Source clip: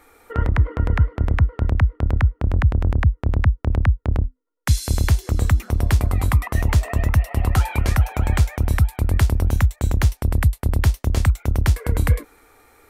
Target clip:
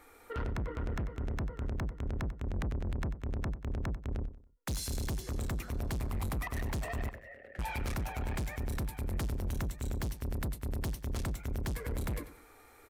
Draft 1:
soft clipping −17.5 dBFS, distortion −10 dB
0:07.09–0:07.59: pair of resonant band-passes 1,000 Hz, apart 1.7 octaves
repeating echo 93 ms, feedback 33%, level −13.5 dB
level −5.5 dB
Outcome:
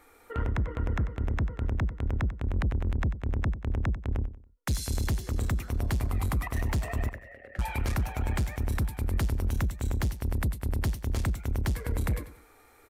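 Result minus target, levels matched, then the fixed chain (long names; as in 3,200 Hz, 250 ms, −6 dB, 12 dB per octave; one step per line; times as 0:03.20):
soft clipping: distortion −5 dB
soft clipping −26.5 dBFS, distortion −5 dB
0:07.09–0:07.59: pair of resonant band-passes 1,000 Hz, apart 1.7 octaves
repeating echo 93 ms, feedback 33%, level −13.5 dB
level −5.5 dB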